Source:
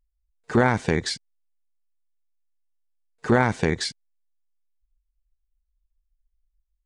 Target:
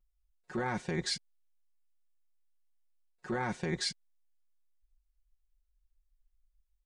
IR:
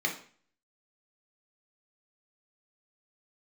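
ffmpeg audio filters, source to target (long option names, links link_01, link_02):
-af "areverse,acompressor=threshold=-28dB:ratio=6,areverse,aecho=1:1:5.5:1,volume=-5.5dB"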